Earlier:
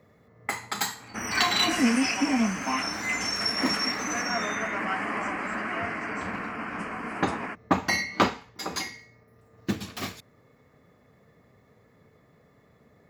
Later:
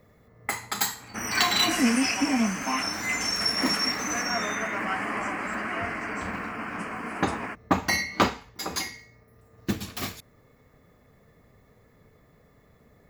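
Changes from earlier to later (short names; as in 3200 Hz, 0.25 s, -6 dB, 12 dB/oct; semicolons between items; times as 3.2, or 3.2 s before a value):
first sound: remove HPF 94 Hz; master: add high shelf 9900 Hz +10.5 dB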